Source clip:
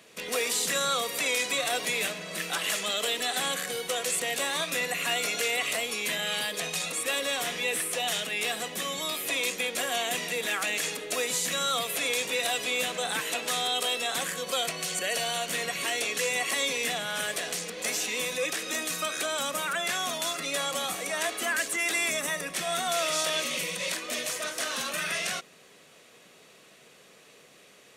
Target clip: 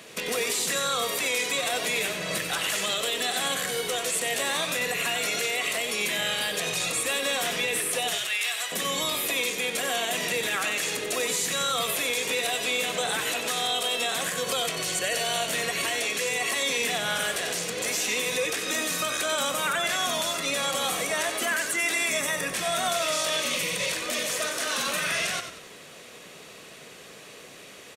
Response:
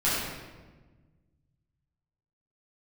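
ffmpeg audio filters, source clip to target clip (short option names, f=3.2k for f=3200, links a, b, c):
-filter_complex "[0:a]asettb=1/sr,asplit=3[a][b][c];[a]atrim=end=8.154[d];[b]atrim=start=8.15:end=8.72,asetpts=PTS-STARTPTS,afade=t=in:d=0.004:c=qsin,afade=t=out:st=0.566:d=0.004:c=qsin,highpass=1.1k[e];[c]atrim=start=8.716[f];[d][e]acrossfade=d=0.004:c1=hsin:c2=qsin[g];[g][f]acrossfade=d=0.004:c1=qsin:c2=hsin,alimiter=level_in=2.5dB:limit=-24dB:level=0:latency=1:release=238,volume=-2.5dB,asplit=5[h][i][j][k][l];[i]adelay=93,afreqshift=-44,volume=-8.5dB[m];[j]adelay=186,afreqshift=-88,volume=-16.7dB[n];[k]adelay=279,afreqshift=-132,volume=-24.9dB[o];[l]adelay=372,afreqshift=-176,volume=-33dB[p];[h][m][n][o][p]amix=inputs=5:normalize=0,volume=8.5dB"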